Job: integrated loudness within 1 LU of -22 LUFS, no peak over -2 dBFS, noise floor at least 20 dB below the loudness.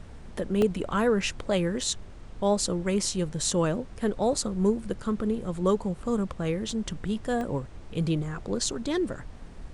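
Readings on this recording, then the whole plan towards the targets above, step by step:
dropouts 4; longest dropout 1.5 ms; noise floor -44 dBFS; noise floor target -49 dBFS; loudness -28.5 LUFS; peak level -10.5 dBFS; loudness target -22.0 LUFS
-> interpolate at 0.62/1.81/6.71/7.41 s, 1.5 ms; noise print and reduce 6 dB; trim +6.5 dB

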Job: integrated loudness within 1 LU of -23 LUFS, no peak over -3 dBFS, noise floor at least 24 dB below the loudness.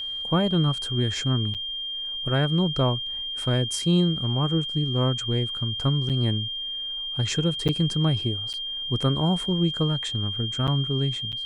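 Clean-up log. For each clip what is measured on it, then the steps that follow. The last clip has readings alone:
dropouts 6; longest dropout 7.5 ms; steady tone 3.2 kHz; tone level -29 dBFS; loudness -24.5 LUFS; peak level -10.0 dBFS; loudness target -23.0 LUFS
-> interpolate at 1.54/6.09/7.68/8.53/10.67/11.32 s, 7.5 ms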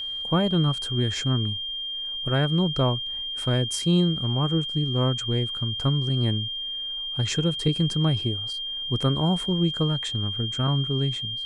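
dropouts 0; steady tone 3.2 kHz; tone level -29 dBFS
-> band-stop 3.2 kHz, Q 30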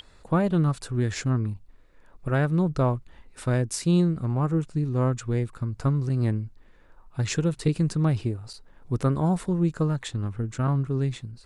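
steady tone not found; loudness -26.0 LUFS; peak level -10.5 dBFS; loudness target -23.0 LUFS
-> trim +3 dB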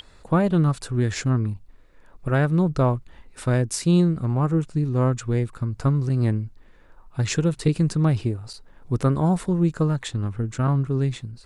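loudness -23.0 LUFS; peak level -7.5 dBFS; noise floor -52 dBFS

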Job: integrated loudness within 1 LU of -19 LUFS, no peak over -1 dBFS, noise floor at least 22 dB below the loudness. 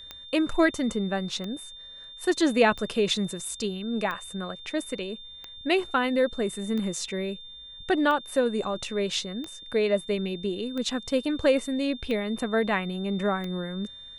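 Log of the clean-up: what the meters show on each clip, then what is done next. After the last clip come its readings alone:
clicks found 11; steady tone 3.6 kHz; tone level -42 dBFS; loudness -27.5 LUFS; peak level -8.5 dBFS; loudness target -19.0 LUFS
-> de-click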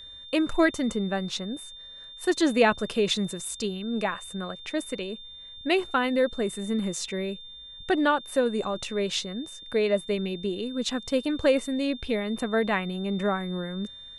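clicks found 0; steady tone 3.6 kHz; tone level -42 dBFS
-> band-stop 3.6 kHz, Q 30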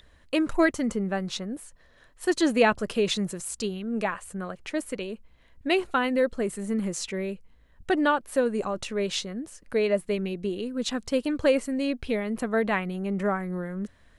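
steady tone not found; loudness -27.5 LUFS; peak level -8.5 dBFS; loudness target -19.0 LUFS
-> trim +8.5 dB; peak limiter -1 dBFS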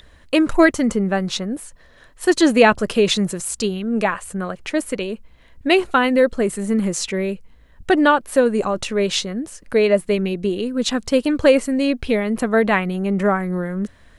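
loudness -19.0 LUFS; peak level -1.0 dBFS; noise floor -49 dBFS

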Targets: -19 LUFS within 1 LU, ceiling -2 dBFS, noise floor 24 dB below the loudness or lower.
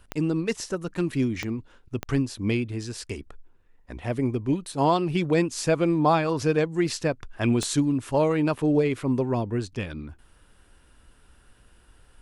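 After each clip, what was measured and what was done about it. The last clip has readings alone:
clicks found 4; loudness -25.5 LUFS; peak level -10.0 dBFS; loudness target -19.0 LUFS
-> de-click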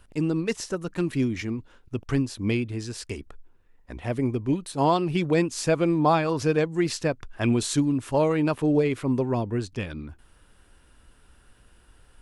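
clicks found 0; loudness -25.5 LUFS; peak level -10.0 dBFS; loudness target -19.0 LUFS
-> trim +6.5 dB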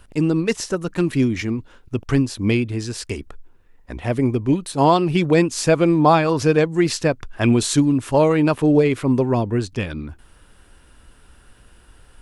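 loudness -19.0 LUFS; peak level -3.5 dBFS; noise floor -52 dBFS

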